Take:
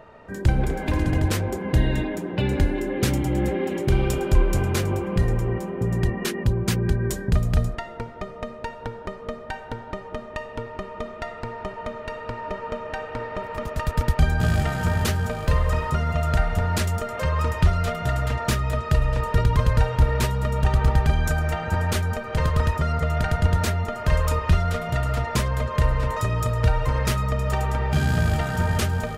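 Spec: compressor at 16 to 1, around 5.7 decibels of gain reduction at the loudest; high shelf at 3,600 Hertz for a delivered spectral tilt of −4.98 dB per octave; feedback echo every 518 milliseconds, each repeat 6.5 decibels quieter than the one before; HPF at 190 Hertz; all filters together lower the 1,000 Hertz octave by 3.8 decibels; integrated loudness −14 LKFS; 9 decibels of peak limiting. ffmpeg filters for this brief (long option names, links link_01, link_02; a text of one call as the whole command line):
ffmpeg -i in.wav -af "highpass=190,equalizer=frequency=1000:width_type=o:gain=-4.5,highshelf=frequency=3600:gain=-3.5,acompressor=threshold=-28dB:ratio=16,alimiter=level_in=2dB:limit=-24dB:level=0:latency=1,volume=-2dB,aecho=1:1:518|1036|1554|2072|2590|3108:0.473|0.222|0.105|0.0491|0.0231|0.0109,volume=20.5dB" out.wav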